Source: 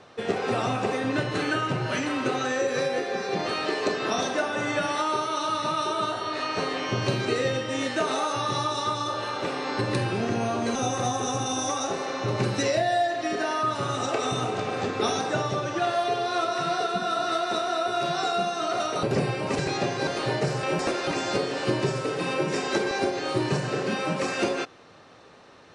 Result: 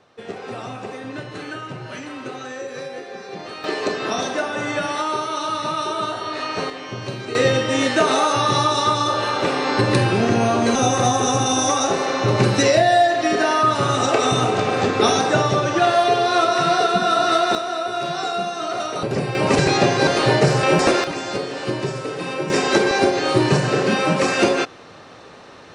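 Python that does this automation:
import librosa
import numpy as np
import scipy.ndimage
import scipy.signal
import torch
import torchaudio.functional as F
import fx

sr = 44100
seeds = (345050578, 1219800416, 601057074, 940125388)

y = fx.gain(x, sr, db=fx.steps((0.0, -5.5), (3.64, 3.0), (6.7, -3.5), (7.35, 9.0), (17.55, 2.0), (19.35, 10.5), (21.04, 1.0), (22.5, 9.0)))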